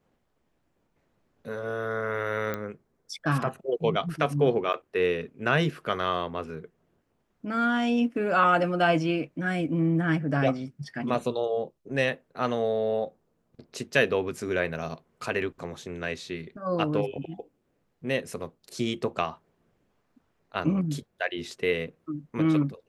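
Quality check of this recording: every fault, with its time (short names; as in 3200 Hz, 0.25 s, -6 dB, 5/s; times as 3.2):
2.54 pop -17 dBFS
4.73–4.74 gap 8.6 ms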